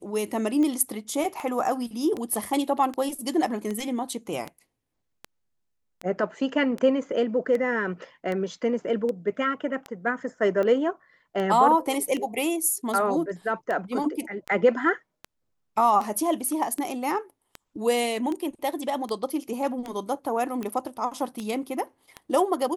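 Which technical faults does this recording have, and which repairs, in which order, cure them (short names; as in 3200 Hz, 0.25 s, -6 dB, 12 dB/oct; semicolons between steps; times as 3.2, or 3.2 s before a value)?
tick 78 rpm -19 dBFS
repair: de-click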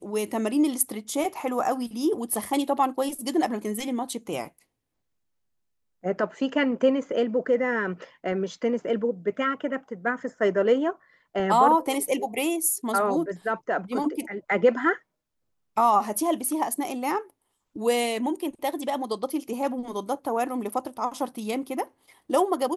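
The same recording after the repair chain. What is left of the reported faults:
none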